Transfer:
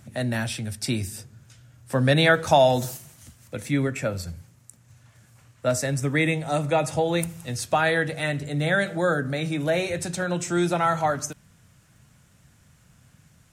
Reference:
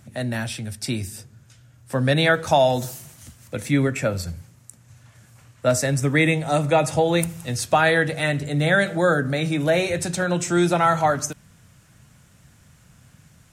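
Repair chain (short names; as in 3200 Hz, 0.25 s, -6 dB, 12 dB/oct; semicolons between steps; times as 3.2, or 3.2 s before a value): de-click; gain 0 dB, from 2.97 s +4 dB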